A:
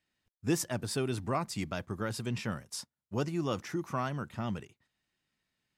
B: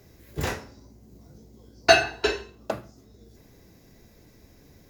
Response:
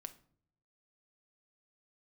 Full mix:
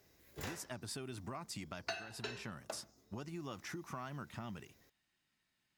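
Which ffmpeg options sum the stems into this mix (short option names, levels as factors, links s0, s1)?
-filter_complex "[0:a]equalizer=f=490:t=o:w=0.44:g=-6,acompressor=threshold=0.0112:ratio=6,volume=1.06[s0];[1:a]lowshelf=f=460:g=-7.5,volume=0.335[s1];[s0][s1]amix=inputs=2:normalize=0,lowshelf=f=250:g=-4,acompressor=threshold=0.01:ratio=5"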